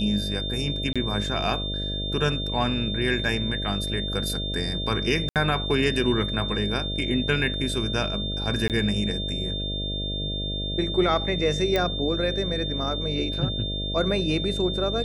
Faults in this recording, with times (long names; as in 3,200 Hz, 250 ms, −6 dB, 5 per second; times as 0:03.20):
mains buzz 50 Hz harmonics 13 −31 dBFS
whistle 3,600 Hz −30 dBFS
0:00.93–0:00.96: drop-out 26 ms
0:05.29–0:05.36: drop-out 68 ms
0:08.68–0:08.70: drop-out 18 ms
0:11.76: click −11 dBFS